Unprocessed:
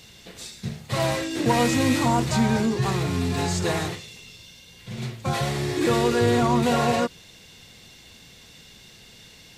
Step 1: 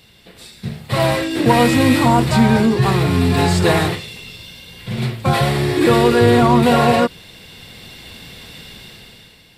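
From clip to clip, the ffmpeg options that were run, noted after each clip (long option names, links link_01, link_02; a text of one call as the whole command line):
ffmpeg -i in.wav -af "equalizer=frequency=6400:width_type=o:width=0.45:gain=-12.5,dynaudnorm=framelen=110:gausssize=13:maxgain=12.5dB" out.wav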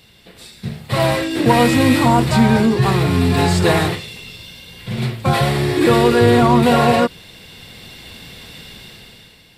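ffmpeg -i in.wav -af anull out.wav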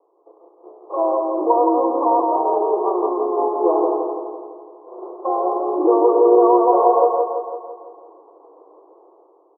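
ffmpeg -i in.wav -filter_complex "[0:a]asuperpass=centerf=600:order=20:qfactor=0.73,asplit=2[link_01][link_02];[link_02]aecho=0:1:168|336|504|672|840|1008|1176|1344:0.668|0.374|0.21|0.117|0.0657|0.0368|0.0206|0.0115[link_03];[link_01][link_03]amix=inputs=2:normalize=0,volume=-1dB" out.wav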